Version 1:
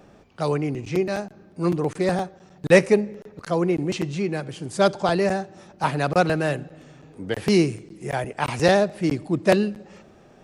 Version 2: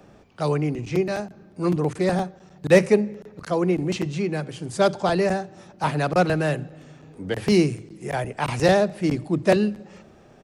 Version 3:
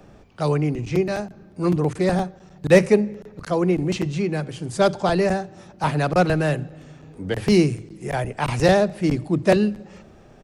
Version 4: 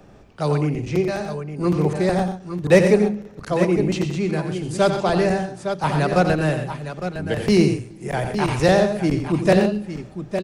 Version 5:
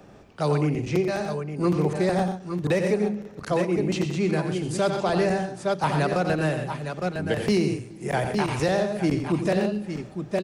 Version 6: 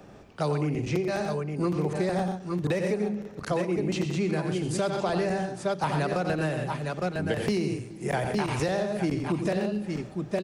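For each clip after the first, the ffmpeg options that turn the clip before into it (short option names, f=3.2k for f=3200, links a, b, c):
-filter_complex "[0:a]acrossover=split=210|770[a][b][c];[a]asplit=2[d][e];[e]adelay=33,volume=-3dB[f];[d][f]amix=inputs=2:normalize=0[g];[c]asoftclip=type=tanh:threshold=-17dB[h];[g][b][h]amix=inputs=3:normalize=0"
-af "lowshelf=f=65:g=11.5,volume=1dB"
-af "aecho=1:1:88|126|856|861:0.376|0.266|0.126|0.316"
-af "lowshelf=f=61:g=-11.5,alimiter=limit=-13.5dB:level=0:latency=1:release=283"
-af "acompressor=threshold=-23dB:ratio=6"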